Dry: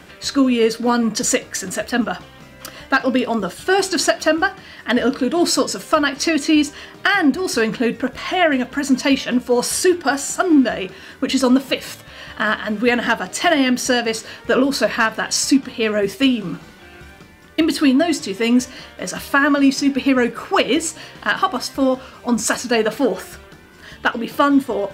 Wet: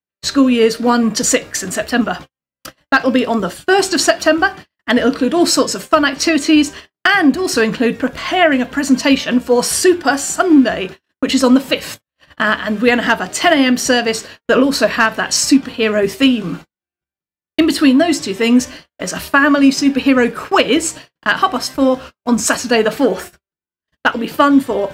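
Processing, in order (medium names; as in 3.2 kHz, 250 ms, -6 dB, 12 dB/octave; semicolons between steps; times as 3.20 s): gate -32 dBFS, range -57 dB; trim +4 dB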